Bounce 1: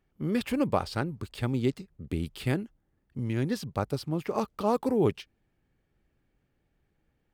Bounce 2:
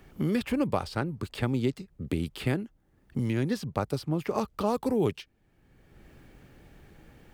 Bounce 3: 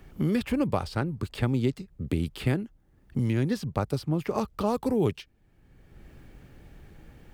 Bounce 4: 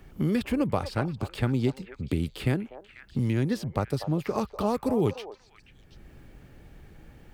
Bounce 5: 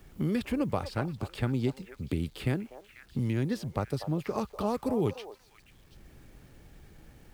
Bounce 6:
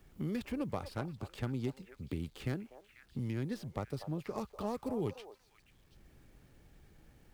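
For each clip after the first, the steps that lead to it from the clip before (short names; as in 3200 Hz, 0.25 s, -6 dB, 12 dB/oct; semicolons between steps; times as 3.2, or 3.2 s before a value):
three-band squash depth 70%
low shelf 130 Hz +6.5 dB
delay with a stepping band-pass 0.244 s, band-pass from 710 Hz, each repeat 1.4 oct, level -7 dB
requantised 10-bit, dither none; gain -3.5 dB
tracing distortion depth 0.078 ms; gain -7.5 dB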